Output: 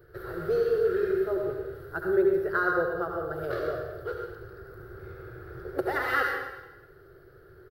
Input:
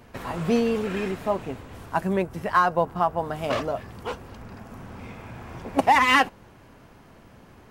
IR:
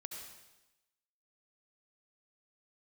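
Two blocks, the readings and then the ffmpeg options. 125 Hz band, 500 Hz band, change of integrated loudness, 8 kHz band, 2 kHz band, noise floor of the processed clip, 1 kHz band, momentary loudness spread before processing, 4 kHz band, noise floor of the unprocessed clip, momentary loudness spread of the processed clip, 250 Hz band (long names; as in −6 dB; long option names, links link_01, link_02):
−8.0 dB, +1.0 dB, −4.5 dB, below −15 dB, −4.0 dB, −54 dBFS, −10.5 dB, 21 LU, −14.5 dB, −51 dBFS, 19 LU, −6.0 dB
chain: -filter_complex "[0:a]firequalizer=gain_entry='entry(140,0);entry(230,-27);entry(360,11);entry(650,-7);entry(980,-18);entry(1400,8);entry(2400,-19);entry(4300,-4);entry(6700,-21);entry(13000,3)':delay=0.05:min_phase=1[link_01];[1:a]atrim=start_sample=2205[link_02];[link_01][link_02]afir=irnorm=-1:irlink=0"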